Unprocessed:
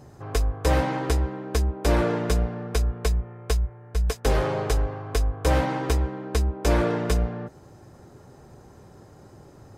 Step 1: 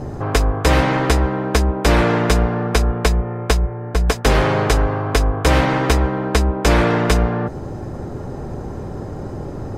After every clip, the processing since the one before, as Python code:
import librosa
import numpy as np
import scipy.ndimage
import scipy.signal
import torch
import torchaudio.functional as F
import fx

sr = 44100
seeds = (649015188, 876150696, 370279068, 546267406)

y = fx.tilt_eq(x, sr, slope=-3.0)
y = fx.spectral_comp(y, sr, ratio=2.0)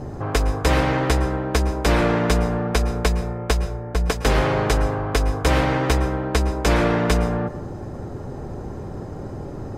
y = fx.rev_plate(x, sr, seeds[0], rt60_s=0.61, hf_ratio=0.55, predelay_ms=100, drr_db=13.0)
y = y * librosa.db_to_amplitude(-4.0)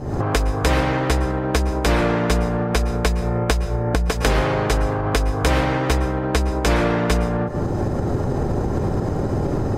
y = fx.recorder_agc(x, sr, target_db=-14.0, rise_db_per_s=73.0, max_gain_db=30)